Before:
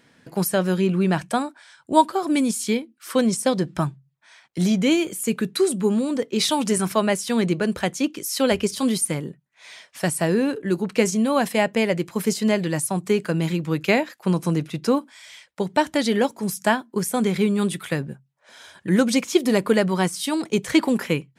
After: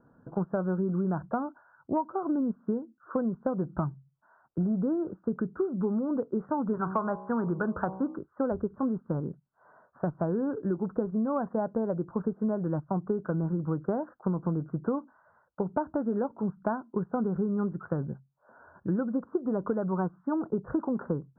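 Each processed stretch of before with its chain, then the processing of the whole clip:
6.73–8.18 band shelf 1900 Hz +8 dB 2.6 oct + de-hum 63.29 Hz, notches 19
whole clip: steep low-pass 1500 Hz 96 dB/oct; low shelf 70 Hz +10.5 dB; compressor 10:1, threshold -22 dBFS; gain -3 dB

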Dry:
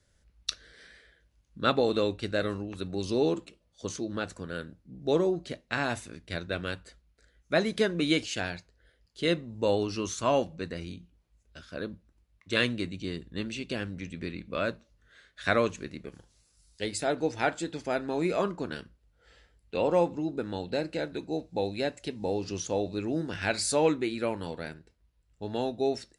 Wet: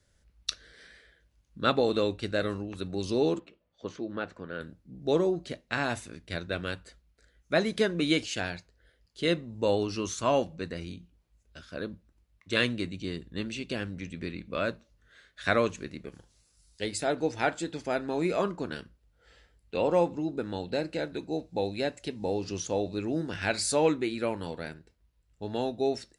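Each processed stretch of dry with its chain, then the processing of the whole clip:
3.39–4.61 LPF 2600 Hz + low shelf 120 Hz -11.5 dB
whole clip: dry

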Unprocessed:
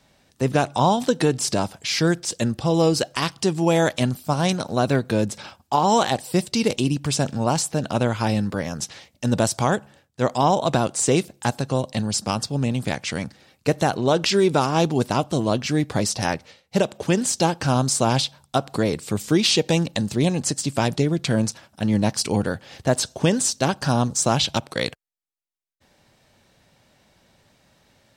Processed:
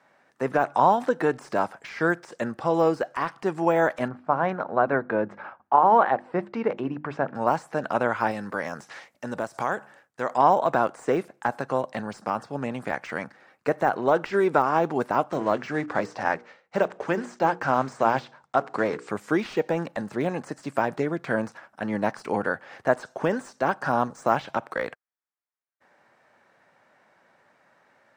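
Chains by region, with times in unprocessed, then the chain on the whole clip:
4.08–7.35 LPF 1800 Hz + notches 50/100/150/200/250/300/350 Hz
8.31–10.34 high shelf 3800 Hz +10 dB + compressor 4:1, threshold -21 dBFS
15.3–19.1 block floating point 5-bit + LPF 7900 Hz 24 dB/oct + notches 60/120/180/240/300/360/420/480 Hz
whole clip: weighting filter A; de-esser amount 75%; resonant high shelf 2400 Hz -13 dB, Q 1.5; gain +1.5 dB

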